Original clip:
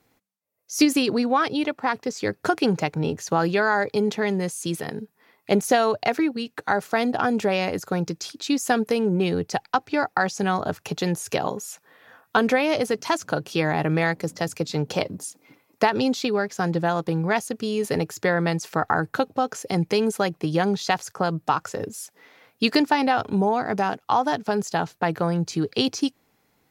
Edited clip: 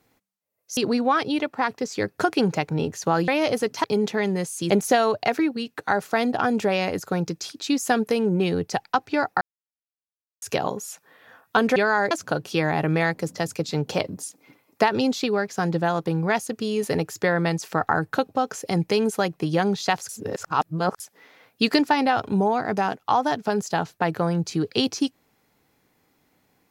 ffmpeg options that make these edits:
-filter_complex "[0:a]asplit=11[a][b][c][d][e][f][g][h][i][j][k];[a]atrim=end=0.772[l];[b]atrim=start=1.018:end=3.532[m];[c]atrim=start=12.558:end=13.122[n];[d]atrim=start=3.878:end=4.742[o];[e]atrim=start=5.498:end=10.21,asetpts=PTS-STARTPTS,afade=t=out:st=4.708:d=0.004:c=hsin[p];[f]atrim=start=10.21:end=11.22,asetpts=PTS-STARTPTS,volume=0[q];[g]atrim=start=11.22:end=12.562,asetpts=PTS-STARTPTS,afade=t=in:d=0.004:c=hsin[r];[h]atrim=start=3.528:end=3.882[s];[i]atrim=start=13.118:end=21.102[t];[j]atrim=start=21.098:end=22.012,asetpts=PTS-STARTPTS,areverse[u];[k]atrim=start=22.008[v];[l][m]acrossfade=d=0.004:c1=hsin:c2=hsin[w];[w][n]acrossfade=d=0.004:c1=hsin:c2=hsin[x];[x][o]acrossfade=d=0.004:c1=hsin:c2=hsin[y];[p][q][r]concat=n=3:v=0:a=1[z];[y][z]acrossfade=d=0.004:c1=hsin:c2=hsin[aa];[aa][s]acrossfade=d=0.004:c1=hsin:c2=hsin[ab];[ab][t]acrossfade=d=0.004:c1=hsin:c2=hsin[ac];[ac][u]acrossfade=d=0.004:c1=hsin:c2=hsin[ad];[ad][v]acrossfade=d=0.004:c1=hsin:c2=hsin"

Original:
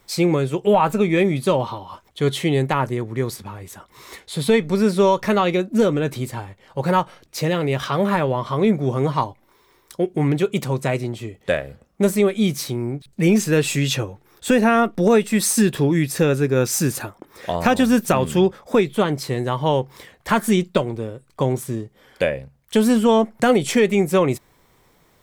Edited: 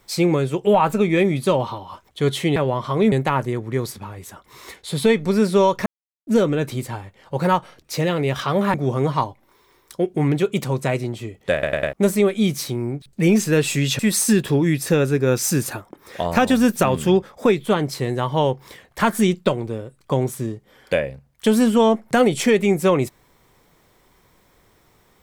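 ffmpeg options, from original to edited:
-filter_complex "[0:a]asplit=11[a][b][c][d][e][f][g][h][i][j][k];[a]atrim=end=2.562[l];[b]atrim=start=8.178:end=8.742[m];[c]atrim=start=2.558:end=5.3,asetpts=PTS-STARTPTS,afade=t=out:st=2.738:d=0.004:c=hsin[n];[d]atrim=start=5.3:end=5.71,asetpts=PTS-STARTPTS,volume=0[o];[e]atrim=start=5.71:end=8.182,asetpts=PTS-STARTPTS,afade=t=in:d=0.004:c=hsin[p];[f]atrim=start=8.738:end=11.632[q];[g]atrim=start=11.528:end=11.632[r];[h]atrim=start=11.528:end=11.632[s];[i]atrim=start=11.528:end=11.632[t];[j]atrim=start=11.928:end=13.992[u];[k]atrim=start=15.278[v];[l][m]acrossfade=d=0.004:c1=hsin:c2=hsin[w];[n][o][p]concat=n=3:v=0:a=1[x];[w][x]acrossfade=d=0.004:c1=hsin:c2=hsin[y];[y][q]acrossfade=d=0.004:c1=hsin:c2=hsin[z];[z][r]acrossfade=d=0.004:c1=hsin:c2=hsin[aa];[aa][s]acrossfade=d=0.004:c1=hsin:c2=hsin[ab];[ab][t]acrossfade=d=0.004:c1=hsin:c2=hsin[ac];[ac][u]acrossfade=d=0.004:c1=hsin:c2=hsin[ad];[ad][v]acrossfade=d=0.004:c1=hsin:c2=hsin"

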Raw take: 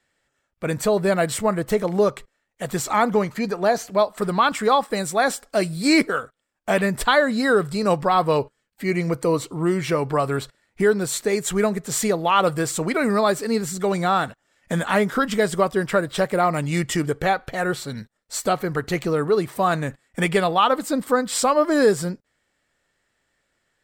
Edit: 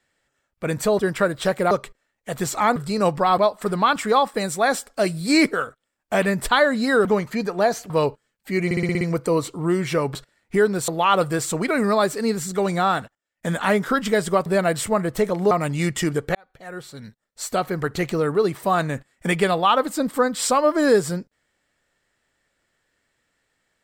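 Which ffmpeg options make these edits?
-filter_complex "[0:a]asplit=20[a][b][c][d][e][f][g][h][i][j][k][l][m][n][o][p][q][r][s][t];[a]atrim=end=0.992[u];[b]atrim=start=15.718:end=16.442[v];[c]atrim=start=2.038:end=3.092[w];[d]atrim=start=7.608:end=8.232[x];[e]atrim=start=3.938:end=7.612[y];[f]atrim=start=3.088:end=3.942[z];[g]atrim=start=8.228:end=9.042[aa];[h]atrim=start=8.978:end=9.042[ab];[i]atrim=start=8.978:end=9.042[ac];[j]atrim=start=8.978:end=9.042[ad];[k]atrim=start=8.978:end=9.042[ae];[l]atrim=start=8.978:end=9.042[af];[m]atrim=start=8.978:end=10.122[ag];[n]atrim=start=10.408:end=11.142[ah];[o]atrim=start=12.138:end=14.41,asetpts=PTS-STARTPTS,afade=t=out:st=1.952:d=0.32:c=log:silence=0.0841395[ai];[p]atrim=start=14.41:end=14.69,asetpts=PTS-STARTPTS,volume=-21.5dB[aj];[q]atrim=start=14.69:end=15.722,asetpts=PTS-STARTPTS,afade=t=in:d=0.32:c=log:silence=0.0841395[ak];[r]atrim=start=0.988:end=2.042[al];[s]atrim=start=16.438:end=17.28,asetpts=PTS-STARTPTS,afade=t=out:st=0.838:d=0.004:c=hsin[am];[t]atrim=start=17.28,asetpts=PTS-STARTPTS,afade=t=in:d=1.47[an];[u][v]acrossfade=d=0.004:c1=hsin:c2=hsin[ao];[ao][w]acrossfade=d=0.004:c1=hsin:c2=hsin[ap];[ap][x]acrossfade=d=0.004:c1=hsin:c2=hsin[aq];[aq][y]acrossfade=d=0.004:c1=hsin:c2=hsin[ar];[ar][z]acrossfade=d=0.004:c1=hsin:c2=hsin[as];[as][aa]acrossfade=d=0.004:c1=hsin:c2=hsin[at];[at][ab]acrossfade=d=0.004:c1=hsin:c2=hsin[au];[au][ac]acrossfade=d=0.004:c1=hsin:c2=hsin[av];[av][ad]acrossfade=d=0.004:c1=hsin:c2=hsin[aw];[aw][ae]acrossfade=d=0.004:c1=hsin:c2=hsin[ax];[ax][af]acrossfade=d=0.004:c1=hsin:c2=hsin[ay];[ay][ag]acrossfade=d=0.004:c1=hsin:c2=hsin[az];[az][ah]acrossfade=d=0.004:c1=hsin:c2=hsin[ba];[ai][aj][ak]concat=n=3:v=0:a=1[bb];[ba][bb]acrossfade=d=0.004:c1=hsin:c2=hsin[bc];[bc][al]acrossfade=d=0.004:c1=hsin:c2=hsin[bd];[am][an]concat=n=2:v=0:a=1[be];[bd][be]acrossfade=d=0.004:c1=hsin:c2=hsin"

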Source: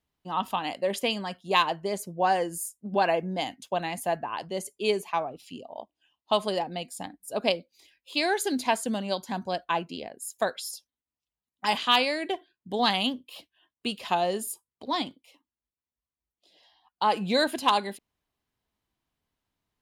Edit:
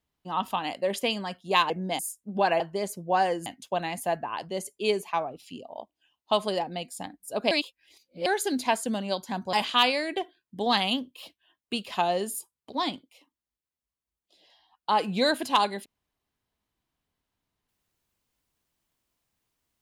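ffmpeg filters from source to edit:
-filter_complex "[0:a]asplit=8[a][b][c][d][e][f][g][h];[a]atrim=end=1.702[i];[b]atrim=start=3.168:end=3.462[j];[c]atrim=start=2.558:end=3.172[k];[d]atrim=start=1.698:end=2.562[l];[e]atrim=start=3.458:end=7.512[m];[f]atrim=start=7.508:end=8.262,asetpts=PTS-STARTPTS,areverse[n];[g]atrim=start=8.258:end=9.532[o];[h]atrim=start=11.658[p];[i][j]acrossfade=d=0.004:c1=hsin:c2=hsin[q];[q][k]acrossfade=d=0.004:c1=hsin:c2=hsin[r];[r][l]acrossfade=d=0.004:c1=hsin:c2=hsin[s];[s][m]acrossfade=d=0.004:c1=hsin:c2=hsin[t];[t][n]acrossfade=d=0.004:c1=hsin:c2=hsin[u];[u][o]acrossfade=d=0.004:c1=hsin:c2=hsin[v];[v][p]acrossfade=d=0.004:c1=hsin:c2=hsin"

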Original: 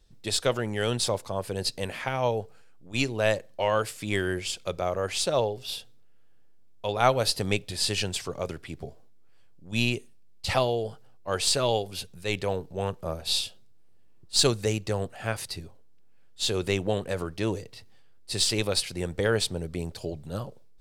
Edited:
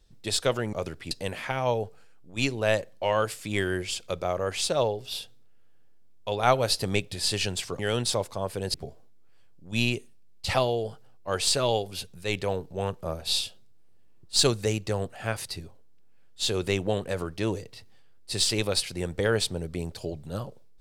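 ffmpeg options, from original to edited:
-filter_complex "[0:a]asplit=5[a][b][c][d][e];[a]atrim=end=0.732[f];[b]atrim=start=8.358:end=8.742[g];[c]atrim=start=1.678:end=8.362[h];[d]atrim=start=0.728:end=1.682[i];[e]atrim=start=8.738[j];[f][g]acrossfade=d=0.004:c1=hsin:c2=hsin[k];[k][h]acrossfade=d=0.004:c1=hsin:c2=hsin[l];[l][i]acrossfade=d=0.004:c1=hsin:c2=hsin[m];[m][j]acrossfade=d=0.004:c1=hsin:c2=hsin"

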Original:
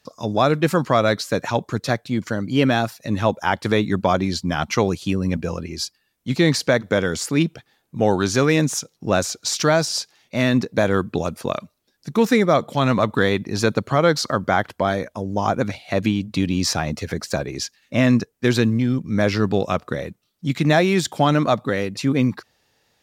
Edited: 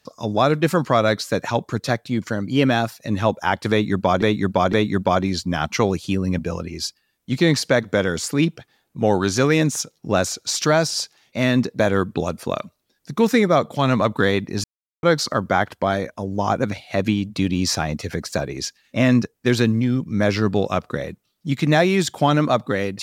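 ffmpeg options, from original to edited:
-filter_complex "[0:a]asplit=5[a][b][c][d][e];[a]atrim=end=4.222[f];[b]atrim=start=3.708:end=4.222[g];[c]atrim=start=3.708:end=13.62,asetpts=PTS-STARTPTS,afade=t=out:st=9.908:d=0.004:c=hsin[h];[d]atrim=start=13.62:end=14.01,asetpts=PTS-STARTPTS,volume=0[i];[e]atrim=start=14.01,asetpts=PTS-STARTPTS,afade=t=in:d=0.004:c=hsin[j];[f][g]acrossfade=d=0.004:c1=hsin:c2=hsin[k];[h][i][j]concat=n=3:v=0:a=1[l];[k][l]acrossfade=d=0.004:c1=hsin:c2=hsin"

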